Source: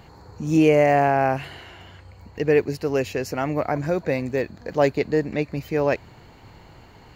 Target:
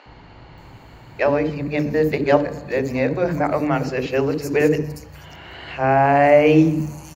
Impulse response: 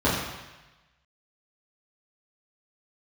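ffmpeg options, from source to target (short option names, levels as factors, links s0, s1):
-filter_complex "[0:a]areverse,acrossover=split=370|5500[s0][s1][s2];[s0]adelay=60[s3];[s2]adelay=580[s4];[s3][s1][s4]amix=inputs=3:normalize=0,asplit=2[s5][s6];[1:a]atrim=start_sample=2205[s7];[s6][s7]afir=irnorm=-1:irlink=0,volume=0.0422[s8];[s5][s8]amix=inputs=2:normalize=0,volume=1.5"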